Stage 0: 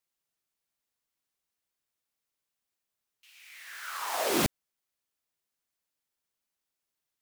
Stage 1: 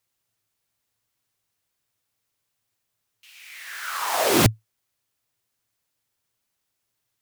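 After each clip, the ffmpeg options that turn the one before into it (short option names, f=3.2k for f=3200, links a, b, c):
-af "equalizer=f=110:t=o:w=0.41:g=14.5,volume=8dB"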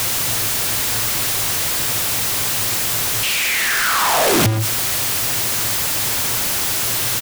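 -af "aeval=exprs='val(0)+0.5*0.133*sgn(val(0))':c=same,aecho=1:1:129:0.112,asoftclip=type=tanh:threshold=-17dB,volume=5dB"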